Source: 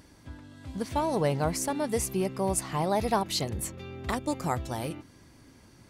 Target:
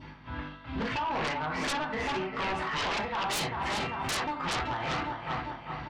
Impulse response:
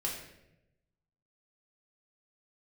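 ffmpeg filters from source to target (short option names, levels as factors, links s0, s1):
-filter_complex "[0:a]lowpass=f=3200:w=0.5412,lowpass=f=3200:w=1.3066,aecho=1:1:394|788|1182|1576|1970|2364|2758:0.251|0.148|0.0874|0.0516|0.0304|0.018|0.0106,adynamicequalizer=threshold=0.00398:dfrequency=1600:dqfactor=1.5:tfrequency=1600:tqfactor=1.5:attack=5:release=100:ratio=0.375:range=3:mode=boostabove:tftype=bell,acompressor=threshold=0.0282:ratio=12,lowshelf=f=700:t=q:w=1.5:g=-8.5,aeval=exprs='val(0)+0.00141*(sin(2*PI*50*n/s)+sin(2*PI*2*50*n/s)/2+sin(2*PI*3*50*n/s)/3+sin(2*PI*4*50*n/s)/4+sin(2*PI*5*50*n/s)/5)':c=same,highpass=82[s0];[1:a]atrim=start_sample=2205,atrim=end_sample=4410[s1];[s0][s1]afir=irnorm=-1:irlink=0,tremolo=f=2.4:d=0.71,aeval=exprs='0.075*sin(PI/2*6.31*val(0)/0.075)':c=same,volume=0.562"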